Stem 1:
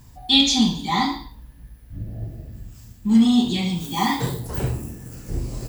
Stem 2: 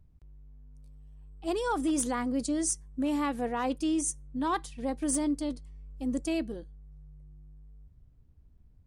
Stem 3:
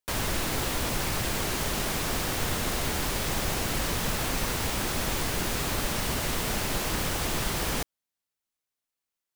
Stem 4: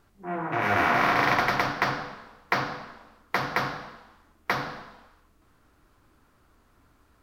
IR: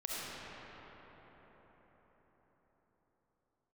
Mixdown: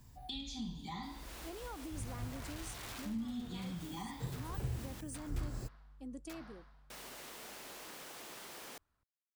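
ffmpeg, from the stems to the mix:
-filter_complex "[0:a]volume=0.282[s0];[1:a]volume=0.224,afade=t=out:st=6.8:d=0.47:silence=0.316228[s1];[2:a]highpass=310,adelay=950,volume=0.119,asplit=3[s2][s3][s4];[s2]atrim=end=5.01,asetpts=PTS-STARTPTS,afade=t=out:st=5.006:d=0.004:c=hsin[s5];[s3]atrim=start=5.01:end=6.9,asetpts=PTS-STARTPTS,volume=0[s6];[s4]atrim=start=6.9,asetpts=PTS-STARTPTS,afade=t=in:d=0.004:c=hsin[s7];[s5][s6][s7]concat=n=3:v=0:a=1[s8];[3:a]equalizer=f=330:t=o:w=1:g=-6.5,bandreject=f=490:w=12,aeval=exprs='(mod(9.44*val(0)+1,2)-1)/9.44':c=same,adelay=1800,volume=0.106[s9];[s0][s1][s8][s9]amix=inputs=4:normalize=0,acrossover=split=130[s10][s11];[s11]acompressor=threshold=0.00708:ratio=10[s12];[s10][s12]amix=inputs=2:normalize=0"

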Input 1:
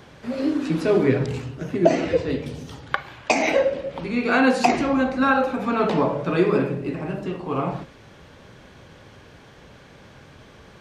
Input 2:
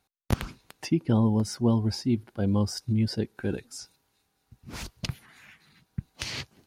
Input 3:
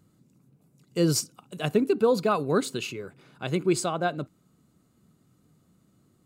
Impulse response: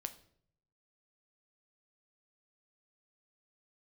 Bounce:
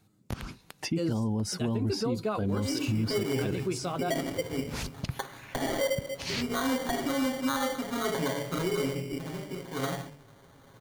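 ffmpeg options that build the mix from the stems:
-filter_complex "[0:a]aecho=1:1:7.3:0.58,bandreject=f=144.5:t=h:w=4,bandreject=f=289:t=h:w=4,bandreject=f=433.5:t=h:w=4,bandreject=f=578:t=h:w=4,bandreject=f=722.5:t=h:w=4,bandreject=f=867:t=h:w=4,bandreject=f=1011.5:t=h:w=4,bandreject=f=1156:t=h:w=4,bandreject=f=1300.5:t=h:w=4,bandreject=f=1445:t=h:w=4,bandreject=f=1589.5:t=h:w=4,bandreject=f=1734:t=h:w=4,bandreject=f=1878.5:t=h:w=4,bandreject=f=2023:t=h:w=4,bandreject=f=2167.5:t=h:w=4,bandreject=f=2312:t=h:w=4,bandreject=f=2456.5:t=h:w=4,bandreject=f=2601:t=h:w=4,bandreject=f=2745.5:t=h:w=4,bandreject=f=2890:t=h:w=4,bandreject=f=3034.5:t=h:w=4,bandreject=f=3179:t=h:w=4,bandreject=f=3323.5:t=h:w=4,bandreject=f=3468:t=h:w=4,bandreject=f=3612.5:t=h:w=4,bandreject=f=3757:t=h:w=4,bandreject=f=3901.5:t=h:w=4,acrusher=samples=17:mix=1:aa=0.000001,adelay=2250,volume=0.335[s0];[1:a]volume=1.26[s1];[2:a]deesser=0.7,flanger=delay=9.2:depth=2.1:regen=42:speed=0.88:shape=sinusoidal,volume=1[s2];[s0][s1][s2]amix=inputs=3:normalize=0,alimiter=limit=0.0891:level=0:latency=1:release=83"

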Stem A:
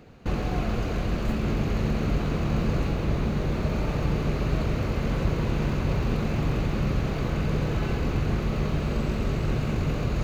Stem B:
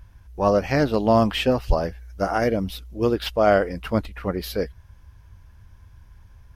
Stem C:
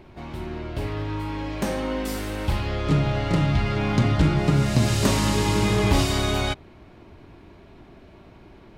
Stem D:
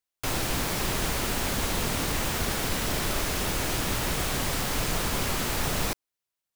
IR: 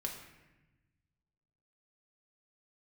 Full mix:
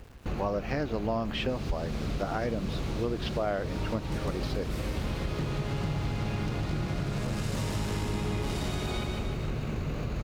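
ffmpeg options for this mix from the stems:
-filter_complex "[0:a]volume=0.596[s0];[1:a]lowpass=5500,acrusher=bits=8:mix=0:aa=0.5,volume=0.668,asplit=2[s1][s2];[2:a]asoftclip=type=tanh:threshold=0.1,adelay=2500,volume=0.473,asplit=2[s3][s4];[s4]volume=0.596[s5];[3:a]bandpass=f=3900:t=q:w=1.6:csg=0,adelay=1250,volume=0.316[s6];[s2]apad=whole_len=497218[s7];[s3][s7]sidechaincompress=threshold=0.00891:ratio=8:attack=16:release=113[s8];[s5]aecho=0:1:154|308|462|616|770|924|1078|1232|1386:1|0.57|0.325|0.185|0.106|0.0602|0.0343|0.0195|0.0111[s9];[s0][s1][s8][s6][s9]amix=inputs=5:normalize=0,aeval=exprs='val(0)*gte(abs(val(0)),0.00266)':c=same,acompressor=threshold=0.0398:ratio=4"

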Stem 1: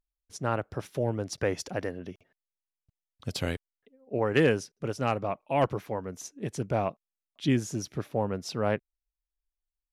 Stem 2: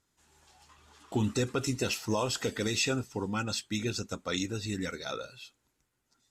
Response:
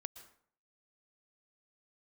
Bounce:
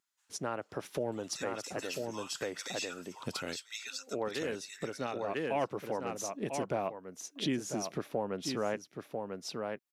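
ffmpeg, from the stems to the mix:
-filter_complex "[0:a]volume=1.33,asplit=2[s0][s1];[s1]volume=0.299[s2];[1:a]highpass=f=1000:w=0.5412,highpass=f=1000:w=1.3066,volume=0.335,asplit=3[s3][s4][s5];[s4]volume=0.1[s6];[s5]apad=whole_len=437703[s7];[s0][s7]sidechaincompress=threshold=0.00282:ratio=8:attack=5.4:release=451[s8];[s2][s6]amix=inputs=2:normalize=0,aecho=0:1:995:1[s9];[s8][s3][s9]amix=inputs=3:normalize=0,dynaudnorm=f=580:g=3:m=2.24,highpass=210,acompressor=threshold=0.0141:ratio=2.5"

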